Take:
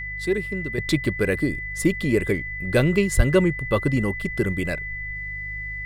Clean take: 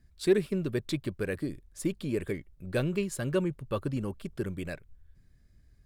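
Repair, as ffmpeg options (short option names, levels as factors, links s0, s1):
-filter_complex "[0:a]bandreject=f=50.7:t=h:w=4,bandreject=f=101.4:t=h:w=4,bandreject=f=152.1:t=h:w=4,bandreject=f=2000:w=30,asplit=3[s0][s1][s2];[s0]afade=t=out:st=3.16:d=0.02[s3];[s1]highpass=f=140:w=0.5412,highpass=f=140:w=1.3066,afade=t=in:st=3.16:d=0.02,afade=t=out:st=3.28:d=0.02[s4];[s2]afade=t=in:st=3.28:d=0.02[s5];[s3][s4][s5]amix=inputs=3:normalize=0,asetnsamples=n=441:p=0,asendcmd='0.78 volume volume -10dB',volume=1"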